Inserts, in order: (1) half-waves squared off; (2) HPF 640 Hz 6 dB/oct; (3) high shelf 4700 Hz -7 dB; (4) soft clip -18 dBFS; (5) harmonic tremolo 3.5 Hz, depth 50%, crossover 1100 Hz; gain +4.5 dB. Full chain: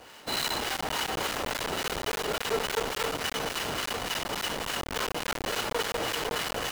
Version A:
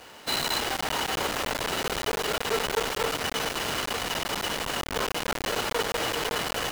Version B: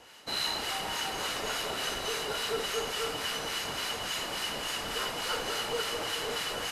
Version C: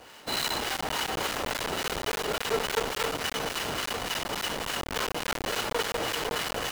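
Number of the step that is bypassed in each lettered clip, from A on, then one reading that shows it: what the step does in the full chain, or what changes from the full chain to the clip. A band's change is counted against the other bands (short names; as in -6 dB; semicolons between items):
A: 5, loudness change +2.5 LU; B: 1, distortion -7 dB; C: 4, distortion -25 dB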